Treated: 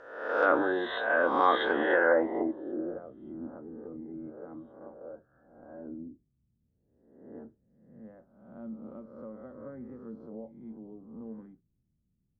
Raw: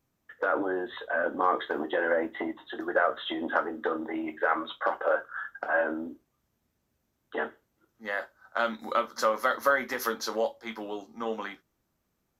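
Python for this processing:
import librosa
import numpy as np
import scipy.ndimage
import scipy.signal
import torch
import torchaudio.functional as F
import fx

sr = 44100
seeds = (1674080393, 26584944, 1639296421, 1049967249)

y = fx.spec_swells(x, sr, rise_s=0.85)
y = fx.filter_sweep_lowpass(y, sr, from_hz=5300.0, to_hz=170.0, start_s=1.46, end_s=3.03, q=1.2)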